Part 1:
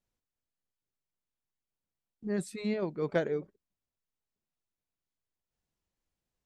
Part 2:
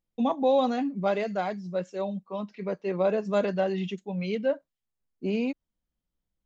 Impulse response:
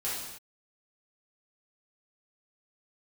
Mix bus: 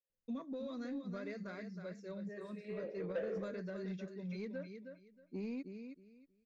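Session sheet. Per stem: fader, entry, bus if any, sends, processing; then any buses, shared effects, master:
−5.5 dB, 0.00 s, send −4.5 dB, no echo send, formant filter e
−9.5 dB, 0.10 s, no send, echo send −8 dB, downward compressor, threshold −25 dBFS, peak gain reduction 7 dB; phaser with its sweep stopped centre 3,000 Hz, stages 6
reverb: on, pre-delay 3 ms
echo: repeating echo 316 ms, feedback 21%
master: soft clipping −32 dBFS, distortion −16 dB

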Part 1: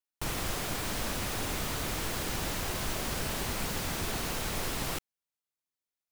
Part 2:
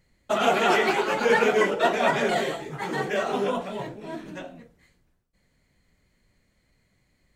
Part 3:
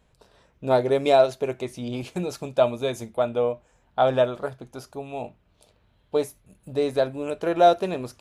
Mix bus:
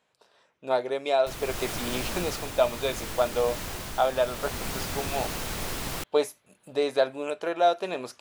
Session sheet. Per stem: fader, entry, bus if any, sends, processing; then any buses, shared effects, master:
−4.0 dB, 1.05 s, no send, no processing
muted
−0.5 dB, 0.00 s, no send, meter weighting curve A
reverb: not used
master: speech leveller within 5 dB 0.5 s

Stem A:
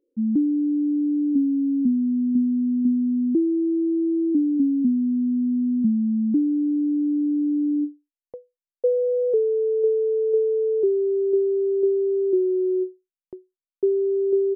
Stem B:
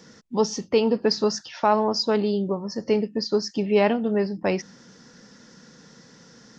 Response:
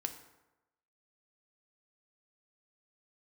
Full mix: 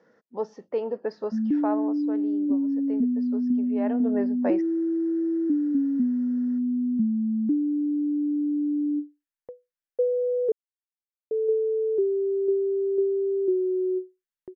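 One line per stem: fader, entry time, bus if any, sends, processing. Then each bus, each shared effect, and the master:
−3.5 dB, 1.15 s, muted 0:10.52–0:11.31, no send, no processing
0:01.59 −4.5 dB → 0:02.03 −12 dB → 0:03.75 −12 dB → 0:04.06 −1.5 dB, 0.00 s, no send, resonant band-pass 570 Hz, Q 1.7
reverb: not used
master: parametric band 1,700 Hz +8.5 dB 0.75 octaves

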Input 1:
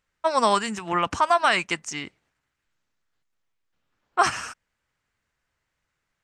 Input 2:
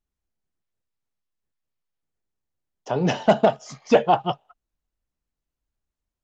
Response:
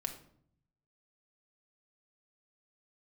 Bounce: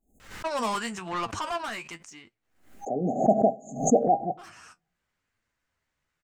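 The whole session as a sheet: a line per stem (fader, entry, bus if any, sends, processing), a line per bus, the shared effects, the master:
+1.5 dB, 0.20 s, no send, soft clipping −22.5 dBFS, distortion −7 dB; flanger 0.95 Hz, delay 8.4 ms, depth 5.7 ms, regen +44%; automatic ducking −22 dB, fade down 1.55 s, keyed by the second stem
−12.0 dB, 0.00 s, send −13 dB, brick-wall band-stop 810–6,300 Hz; octave-band graphic EQ 125/250/1,000 Hz −6/+11/+12 dB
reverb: on, RT60 0.60 s, pre-delay 4 ms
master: background raised ahead of every attack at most 110 dB per second

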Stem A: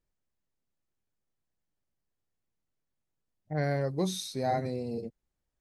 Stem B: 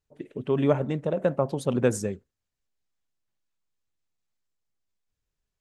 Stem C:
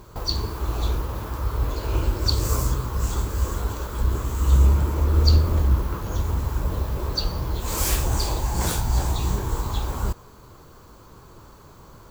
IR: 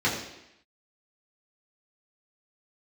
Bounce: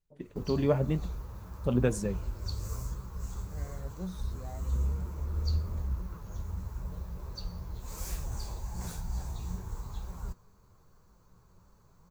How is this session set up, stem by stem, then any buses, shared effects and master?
−15.0 dB, 0.00 s, no send, no processing
−1.0 dB, 0.00 s, muted 0:01.06–0:01.64, no send, no processing
−14.0 dB, 0.20 s, no send, thirty-one-band graphic EQ 315 Hz −6 dB, 3,150 Hz −6 dB, 6,300 Hz +4 dB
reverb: not used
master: low-shelf EQ 84 Hz +10 dB; flanger 0.99 Hz, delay 5.1 ms, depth 6.1 ms, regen +63%; parametric band 180 Hz +9.5 dB 0.23 octaves

